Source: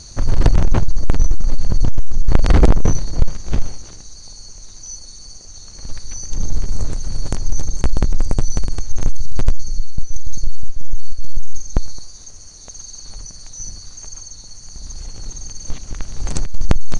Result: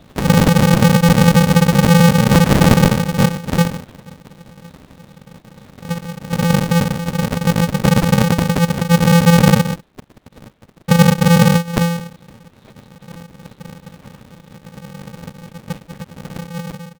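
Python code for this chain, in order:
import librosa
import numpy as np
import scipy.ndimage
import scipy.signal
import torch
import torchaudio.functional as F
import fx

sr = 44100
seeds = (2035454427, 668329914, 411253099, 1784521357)

y = fx.fade_out_tail(x, sr, length_s=2.39)
y = fx.highpass(y, sr, hz=86.0, slope=12, at=(9.74, 10.9))
y = fx.lpc_vocoder(y, sr, seeds[0], excitation='whisper', order=10)
y = y * np.sign(np.sin(2.0 * np.pi * 170.0 * np.arange(len(y)) / sr))
y = y * 10.0 ** (-4.0 / 20.0)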